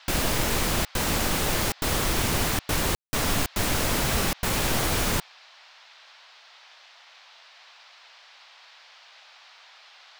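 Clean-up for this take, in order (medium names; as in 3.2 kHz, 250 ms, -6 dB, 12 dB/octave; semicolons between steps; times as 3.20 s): room tone fill 2.95–3.13 s; noise print and reduce 21 dB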